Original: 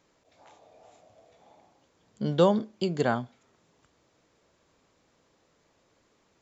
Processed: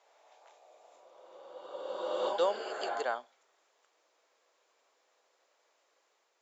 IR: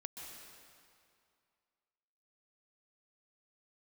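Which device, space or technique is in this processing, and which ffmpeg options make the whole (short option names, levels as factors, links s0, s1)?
ghost voice: -filter_complex "[0:a]areverse[s0];[1:a]atrim=start_sample=2205[s1];[s0][s1]afir=irnorm=-1:irlink=0,areverse,highpass=f=480:w=0.5412,highpass=f=480:w=1.3066"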